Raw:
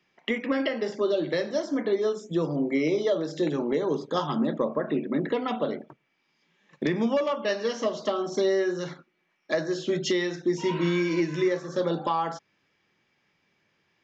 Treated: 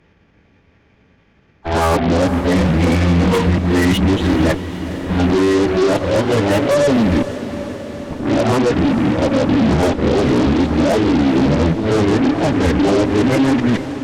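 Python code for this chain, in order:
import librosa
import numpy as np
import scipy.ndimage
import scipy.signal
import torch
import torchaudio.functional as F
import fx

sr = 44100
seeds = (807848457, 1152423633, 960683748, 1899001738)

p1 = x[::-1].copy()
p2 = fx.tilt_eq(p1, sr, slope=-3.5)
p3 = fx.over_compress(p2, sr, threshold_db=-23.0, ratio=-0.5)
p4 = p2 + (p3 * 10.0 ** (1.0 / 20.0))
p5 = fx.pitch_keep_formants(p4, sr, semitones=-12.0)
p6 = 10.0 ** (-18.0 / 20.0) * np.tanh(p5 / 10.0 ** (-18.0 / 20.0))
p7 = fx.cheby_harmonics(p6, sr, harmonics=(8,), levels_db=(-15,), full_scale_db=-18.0)
p8 = p7 + fx.echo_diffused(p7, sr, ms=468, feedback_pct=69, wet_db=-12.5, dry=0)
y = p8 * 10.0 ** (7.5 / 20.0)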